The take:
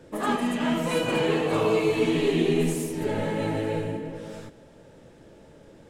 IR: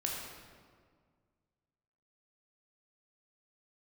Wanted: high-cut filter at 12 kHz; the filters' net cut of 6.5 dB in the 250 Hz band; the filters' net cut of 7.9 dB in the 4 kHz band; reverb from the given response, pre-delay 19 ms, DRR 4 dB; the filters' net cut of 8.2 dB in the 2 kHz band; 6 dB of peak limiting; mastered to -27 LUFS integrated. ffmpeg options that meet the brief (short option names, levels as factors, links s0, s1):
-filter_complex "[0:a]lowpass=12000,equalizer=f=250:t=o:g=-9,equalizer=f=2000:t=o:g=-8.5,equalizer=f=4000:t=o:g=-7,alimiter=limit=0.0891:level=0:latency=1,asplit=2[s0][s1];[1:a]atrim=start_sample=2205,adelay=19[s2];[s1][s2]afir=irnorm=-1:irlink=0,volume=0.447[s3];[s0][s3]amix=inputs=2:normalize=0,volume=1.33"